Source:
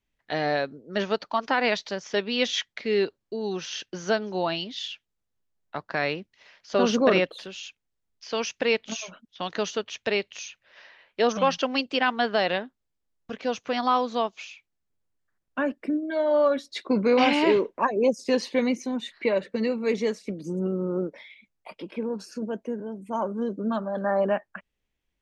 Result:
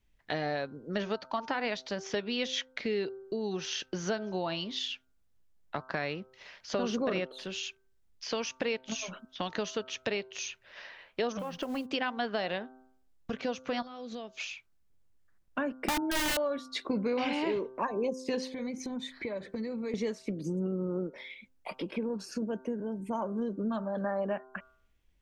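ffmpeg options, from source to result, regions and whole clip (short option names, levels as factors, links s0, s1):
-filter_complex "[0:a]asettb=1/sr,asplit=3[s0][s1][s2];[s0]atrim=end=11.394[s3];[s1]atrim=start=11.39:end=11.91,asetpts=PTS-STARTPTS,afade=t=in:d=0.004:c=qsin,afade=t=out:st=0.516:d=0.004:c=qsin,equalizer=f=5100:w=0.5:g=-13,acompressor=threshold=0.0398:ratio=16:attack=3.2:release=140:knee=1:detection=peak,acrusher=bits=6:mode=log:mix=0:aa=0.000001[s4];[s2]atrim=start=11.906[s5];[s3][s4]acrossfade=d=0.004:c1=hsin:c2=qsin[s6];[s6][s5]acrossfade=d=0.004:c1=qsin:c2=hsin,asettb=1/sr,asplit=3[s7][s8][s9];[s7]atrim=end=13.824[s10];[s8]atrim=start=13.82:end=14.4,asetpts=PTS-STARTPTS,afade=t=in:d=0.004:c=qsin,afade=t=out:st=0.576:d=0.004:c=qsin,equalizer=f=1000:t=o:w=0.61:g=-13,acompressor=threshold=0.00794:ratio=5:attack=3.2:release=140:knee=1:detection=peak[s11];[s9]atrim=start=14.396[s12];[s10][s11]acrossfade=d=0.004:c1=hsin:c2=qsin[s13];[s13][s12]acrossfade=d=0.004:c1=qsin:c2=hsin,asettb=1/sr,asplit=3[s14][s15][s16];[s14]atrim=end=15.834[s17];[s15]atrim=start=15.83:end=16.37,asetpts=PTS-STARTPTS,afade=t=in:d=0.004:c=qsin,afade=t=out:st=0.536:d=0.004:c=qsin,acontrast=72,aeval=exprs='(mod(6.31*val(0)+1,2)-1)/6.31':c=same[s18];[s16]atrim=start=16.366[s19];[s17][s18]acrossfade=d=0.004:c1=hsin:c2=qsin[s20];[s20][s19]acrossfade=d=0.004:c1=qsin:c2=hsin,asettb=1/sr,asplit=3[s21][s22][s23];[s21]atrim=end=18.474[s24];[s22]atrim=start=18.47:end=19.94,asetpts=PTS-STARTPTS,afade=t=in:d=0.004:c=qsin,afade=t=out:st=1.466:d=0.004:c=qsin,asuperstop=centerf=2800:order=8:qfactor=7.8,equalizer=f=69:t=o:w=1.6:g=7.5,acompressor=threshold=0.00891:ratio=2.5:attack=3.2:release=140:knee=1:detection=peak[s25];[s23]atrim=start=19.936[s26];[s24][s25]acrossfade=d=0.004:c1=hsin:c2=qsin[s27];[s27][s26]acrossfade=d=0.004:c1=qsin:c2=hsin,lowshelf=f=120:g=9.5,bandreject=f=129.4:t=h:w=4,bandreject=f=258.8:t=h:w=4,bandreject=f=388.2:t=h:w=4,bandreject=f=517.6:t=h:w=4,bandreject=f=647:t=h:w=4,bandreject=f=776.4:t=h:w=4,bandreject=f=905.8:t=h:w=4,bandreject=f=1035.2:t=h:w=4,bandreject=f=1164.6:t=h:w=4,bandreject=f=1294:t=h:w=4,bandreject=f=1423.4:t=h:w=4,bandreject=f=1552.8:t=h:w=4,acompressor=threshold=0.0158:ratio=3,volume=1.41"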